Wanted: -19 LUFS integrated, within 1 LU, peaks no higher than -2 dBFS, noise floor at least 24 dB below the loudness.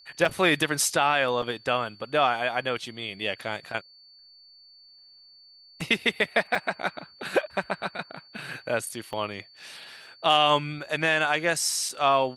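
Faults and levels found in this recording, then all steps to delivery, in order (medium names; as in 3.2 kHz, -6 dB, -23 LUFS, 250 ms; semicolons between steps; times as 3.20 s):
dropouts 6; longest dropout 3.8 ms; steady tone 4.5 kHz; tone level -51 dBFS; loudness -26.0 LUFS; peak level -8.0 dBFS; loudness target -19.0 LUFS
-> interpolate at 0.25/1.42/5.81/6.55/9.13/11.89 s, 3.8 ms; band-stop 4.5 kHz, Q 30; trim +7 dB; peak limiter -2 dBFS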